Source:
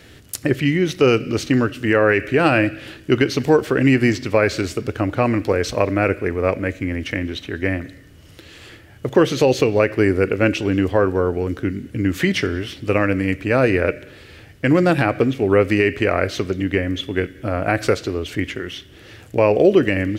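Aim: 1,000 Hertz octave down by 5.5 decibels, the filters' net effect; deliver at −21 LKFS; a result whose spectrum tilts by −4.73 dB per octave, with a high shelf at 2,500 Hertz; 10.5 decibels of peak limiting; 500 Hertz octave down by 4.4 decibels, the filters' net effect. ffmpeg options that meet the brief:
ffmpeg -i in.wav -af "equalizer=frequency=500:width_type=o:gain=-4,equalizer=frequency=1000:width_type=o:gain=-8,highshelf=frequency=2500:gain=6,volume=1dB,alimiter=limit=-7.5dB:level=0:latency=1" out.wav

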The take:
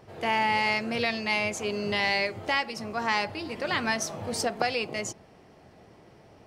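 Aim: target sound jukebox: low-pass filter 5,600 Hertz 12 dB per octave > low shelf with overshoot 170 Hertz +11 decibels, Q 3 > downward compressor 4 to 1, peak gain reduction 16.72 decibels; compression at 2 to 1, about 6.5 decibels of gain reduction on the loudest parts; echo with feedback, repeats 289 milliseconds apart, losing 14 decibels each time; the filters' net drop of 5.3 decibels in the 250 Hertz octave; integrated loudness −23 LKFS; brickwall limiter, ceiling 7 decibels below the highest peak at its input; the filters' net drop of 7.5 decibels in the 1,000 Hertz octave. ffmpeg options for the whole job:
ffmpeg -i in.wav -af "equalizer=frequency=250:width_type=o:gain=-3,equalizer=frequency=1000:width_type=o:gain=-9,acompressor=threshold=-39dB:ratio=2,alimiter=level_in=4dB:limit=-24dB:level=0:latency=1,volume=-4dB,lowpass=5600,lowshelf=frequency=170:width_type=q:width=3:gain=11,aecho=1:1:289|578:0.2|0.0399,acompressor=threshold=-43dB:ratio=4,volume=22.5dB" out.wav

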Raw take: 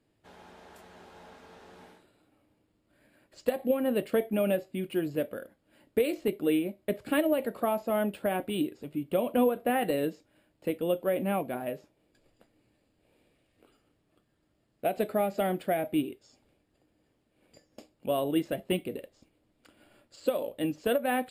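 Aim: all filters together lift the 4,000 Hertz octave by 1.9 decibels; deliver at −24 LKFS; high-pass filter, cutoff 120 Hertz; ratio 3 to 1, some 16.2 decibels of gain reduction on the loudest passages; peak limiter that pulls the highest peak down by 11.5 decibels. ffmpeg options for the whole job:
ffmpeg -i in.wav -af "highpass=120,equalizer=frequency=4000:width_type=o:gain=3,acompressor=threshold=-44dB:ratio=3,volume=25.5dB,alimiter=limit=-13.5dB:level=0:latency=1" out.wav

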